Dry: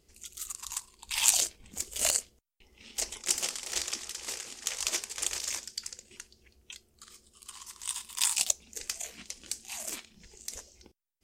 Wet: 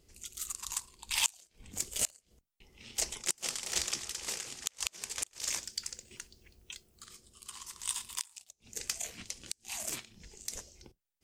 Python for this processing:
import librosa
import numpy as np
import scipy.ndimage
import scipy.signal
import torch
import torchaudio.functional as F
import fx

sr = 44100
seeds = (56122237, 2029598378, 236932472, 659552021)

y = fx.octave_divider(x, sr, octaves=1, level_db=-2.0)
y = fx.gate_flip(y, sr, shuts_db=-13.0, range_db=-31)
y = fx.dmg_noise_colour(y, sr, seeds[0], colour='violet', level_db=-77.0, at=(5.43, 7.05), fade=0.02)